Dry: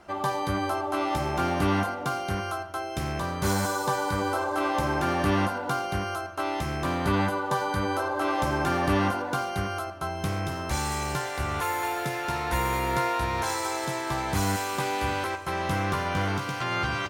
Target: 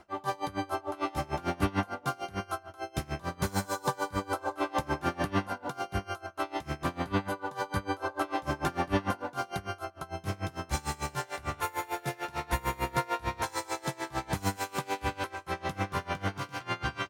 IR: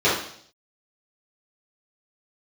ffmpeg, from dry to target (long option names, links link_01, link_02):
-af "aeval=exprs='val(0)*pow(10,-24*(0.5-0.5*cos(2*PI*6.7*n/s))/20)':channel_layout=same"